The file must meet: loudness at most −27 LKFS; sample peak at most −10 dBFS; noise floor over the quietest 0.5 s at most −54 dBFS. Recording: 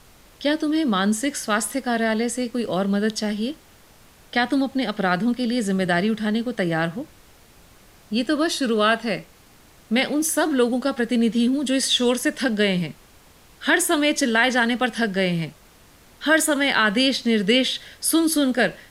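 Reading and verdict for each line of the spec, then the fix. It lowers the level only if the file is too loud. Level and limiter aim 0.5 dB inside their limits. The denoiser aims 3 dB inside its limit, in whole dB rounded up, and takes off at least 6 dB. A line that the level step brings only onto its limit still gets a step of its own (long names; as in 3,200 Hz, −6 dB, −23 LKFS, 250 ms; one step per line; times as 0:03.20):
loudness −21.5 LKFS: out of spec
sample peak −5.0 dBFS: out of spec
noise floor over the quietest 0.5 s −51 dBFS: out of spec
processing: level −6 dB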